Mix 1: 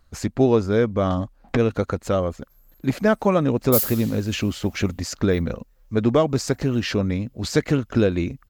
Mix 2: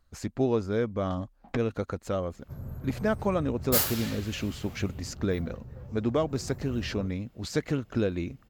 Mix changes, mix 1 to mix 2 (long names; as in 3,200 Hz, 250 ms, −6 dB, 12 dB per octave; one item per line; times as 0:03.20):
speech −8.5 dB
second sound: remove first difference